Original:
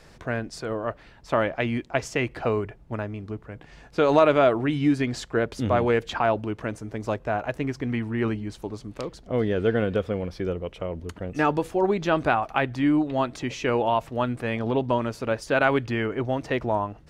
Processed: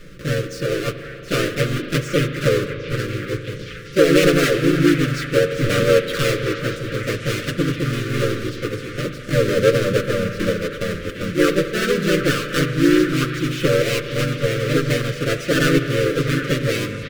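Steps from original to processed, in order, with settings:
each half-wave held at its own peak
elliptic band-stop filter 490–1,200 Hz, stop band 40 dB
high-shelf EQ 5,700 Hz −10 dB
mains-hum notches 50/100/150/200/250 Hz
comb filter 6.7 ms, depth 73%
dynamic equaliser 500 Hz, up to +4 dB, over −33 dBFS, Q 5
in parallel at +1.5 dB: downward compressor 4 to 1, threshold −25 dBFS, peak gain reduction 14 dB
on the sum: spring reverb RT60 3.7 s, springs 39 ms, chirp 55 ms, DRR 8.5 dB
pitch-shifted copies added +3 semitones −1 dB
on a send: echo through a band-pass that steps 761 ms, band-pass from 1,700 Hz, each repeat 0.7 octaves, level −8 dB
on the sum: level −5 dB

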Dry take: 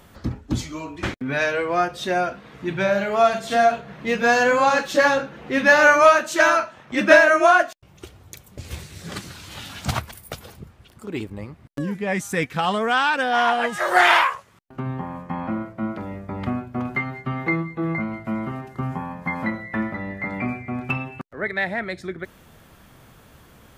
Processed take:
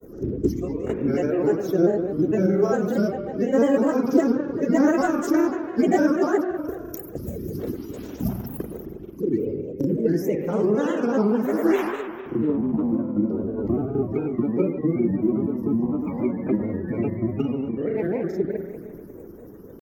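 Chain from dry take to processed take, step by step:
spectral magnitudes quantised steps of 30 dB
drawn EQ curve 120 Hz 0 dB, 420 Hz +12 dB, 650 Hz −8 dB, 1,100 Hz −13 dB, 4,200 Hz −21 dB, 5,900 Hz −1 dB, 9,000 Hz −20 dB, 14,000 Hz +12 dB
in parallel at +2 dB: downward compressor 8 to 1, threshold −31 dBFS, peak gain reduction 21 dB
on the sum: tempo change 1.2×
convolution reverb RT60 2.0 s, pre-delay 50 ms, DRR 3 dB
granular cloud, spray 34 ms, pitch spread up and down by 3 semitones
level −3 dB

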